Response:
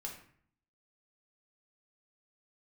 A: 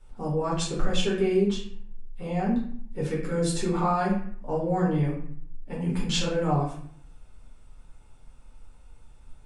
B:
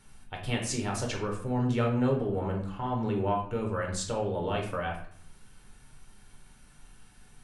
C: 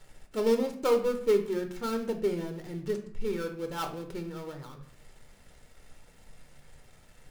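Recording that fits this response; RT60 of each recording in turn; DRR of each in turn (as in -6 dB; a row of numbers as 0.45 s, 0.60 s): B; 0.55 s, 0.55 s, 0.55 s; -6.5 dB, -0.5 dB, 4.5 dB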